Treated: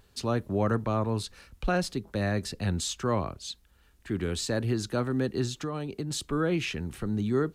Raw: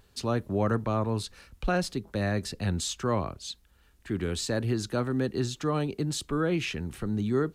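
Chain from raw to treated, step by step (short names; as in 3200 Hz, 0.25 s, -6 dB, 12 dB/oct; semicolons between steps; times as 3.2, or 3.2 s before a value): 5.5–6.11 compressor 5:1, threshold -30 dBFS, peak gain reduction 7 dB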